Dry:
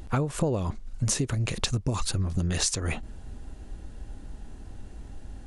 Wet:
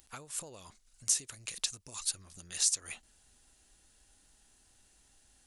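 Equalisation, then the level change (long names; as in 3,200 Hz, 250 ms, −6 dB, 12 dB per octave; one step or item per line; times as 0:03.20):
first-order pre-emphasis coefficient 0.97
0.0 dB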